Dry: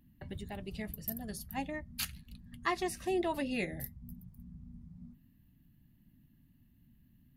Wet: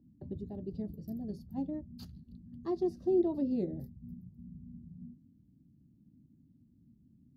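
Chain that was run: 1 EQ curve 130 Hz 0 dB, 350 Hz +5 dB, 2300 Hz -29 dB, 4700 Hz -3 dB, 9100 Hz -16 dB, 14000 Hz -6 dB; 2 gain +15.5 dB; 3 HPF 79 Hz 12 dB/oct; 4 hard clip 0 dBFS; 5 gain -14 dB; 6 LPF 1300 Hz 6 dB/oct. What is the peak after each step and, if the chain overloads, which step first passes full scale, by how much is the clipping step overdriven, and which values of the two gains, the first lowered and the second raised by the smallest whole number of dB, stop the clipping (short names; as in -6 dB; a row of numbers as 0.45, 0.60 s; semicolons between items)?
-20.5, -5.0, -5.0, -5.0, -19.0, -19.5 dBFS; no overload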